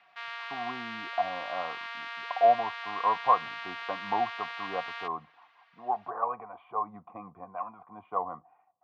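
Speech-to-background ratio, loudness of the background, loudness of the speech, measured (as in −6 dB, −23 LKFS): 6.0 dB, −38.0 LKFS, −32.0 LKFS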